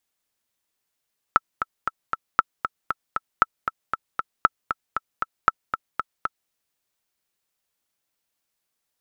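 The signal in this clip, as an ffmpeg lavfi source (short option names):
-f lavfi -i "aevalsrc='pow(10,(-1.5-9*gte(mod(t,4*60/233),60/233))/20)*sin(2*PI*1320*mod(t,60/233))*exp(-6.91*mod(t,60/233)/0.03)':d=5.15:s=44100"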